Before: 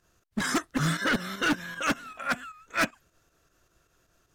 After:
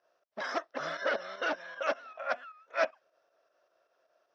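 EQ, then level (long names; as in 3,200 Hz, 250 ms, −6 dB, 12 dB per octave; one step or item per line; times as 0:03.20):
high-pass with resonance 600 Hz, resonance Q 4.9
low-pass with resonance 5,600 Hz, resonance Q 7.6
high-frequency loss of the air 370 metres
−5.5 dB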